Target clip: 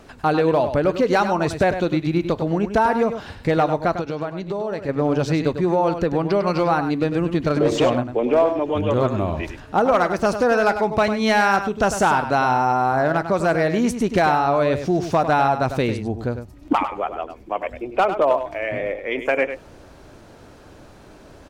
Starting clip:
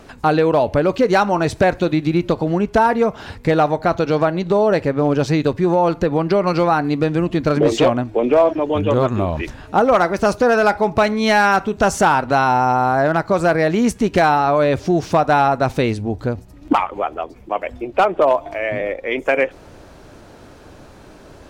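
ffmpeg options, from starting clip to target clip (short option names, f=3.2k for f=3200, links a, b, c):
-filter_complex "[0:a]asettb=1/sr,asplit=3[a][b][c];[a]atrim=end=3.914[d];[b]atrim=start=3.91:end=4.89,asetpts=PTS-STARTPTS,afade=t=in:d=0.004:c=qsin,afade=t=out:st=0.976:d=0.004:c=qsin,acompressor=threshold=-22dB:ratio=3[e];[c]atrim=start=4.886[f];[d][e]acrossfade=d=0.004:c1=hsin:c2=qsin[g];[g][f]acrossfade=d=0.004:c1=qsin:c2=hsin,asplit=2[h][i];[i]aecho=0:1:100:0.335[j];[h][j]amix=inputs=2:normalize=0,volume=-3.5dB"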